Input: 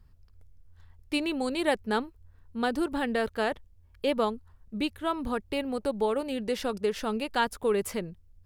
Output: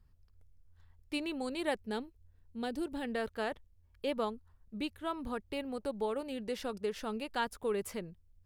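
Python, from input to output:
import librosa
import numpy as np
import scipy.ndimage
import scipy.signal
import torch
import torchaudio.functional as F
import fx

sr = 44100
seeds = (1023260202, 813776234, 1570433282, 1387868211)

y = fx.peak_eq(x, sr, hz=1200.0, db=-9.0, octaves=1.0, at=(1.84, 3.05))
y = F.gain(torch.from_numpy(y), -7.5).numpy()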